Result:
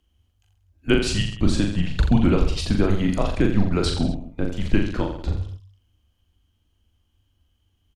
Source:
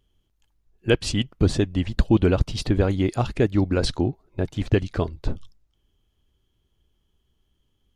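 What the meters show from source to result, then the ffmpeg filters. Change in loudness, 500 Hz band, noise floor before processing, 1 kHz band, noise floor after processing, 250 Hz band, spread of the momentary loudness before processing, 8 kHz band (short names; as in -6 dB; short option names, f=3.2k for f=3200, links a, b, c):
+0.5 dB, -2.0 dB, -71 dBFS, +0.5 dB, -69 dBFS, +2.0 dB, 9 LU, +2.0 dB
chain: -af "afreqshift=-100,aecho=1:1:40|84|132.4|185.6|244.2:0.631|0.398|0.251|0.158|0.1"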